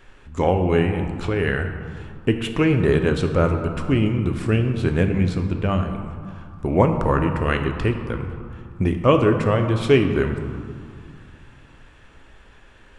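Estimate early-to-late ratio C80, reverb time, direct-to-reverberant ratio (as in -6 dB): 8.0 dB, 2.4 s, 5.0 dB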